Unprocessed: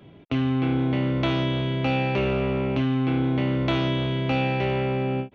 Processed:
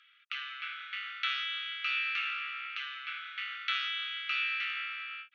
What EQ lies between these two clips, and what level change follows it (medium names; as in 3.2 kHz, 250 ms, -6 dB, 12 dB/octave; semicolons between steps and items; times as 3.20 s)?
Chebyshev high-pass 1.2 kHz, order 10; distance through air 200 m; treble shelf 3.8 kHz +10.5 dB; 0.0 dB